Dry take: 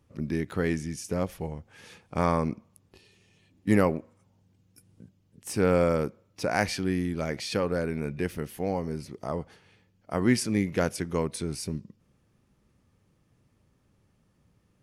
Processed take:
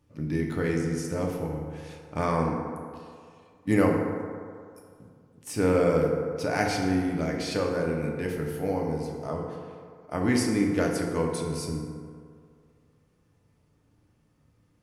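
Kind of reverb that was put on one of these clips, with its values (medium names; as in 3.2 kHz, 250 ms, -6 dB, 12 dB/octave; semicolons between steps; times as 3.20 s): FDN reverb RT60 2.2 s, low-frequency decay 0.8×, high-frequency decay 0.4×, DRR -0.5 dB; trim -2.5 dB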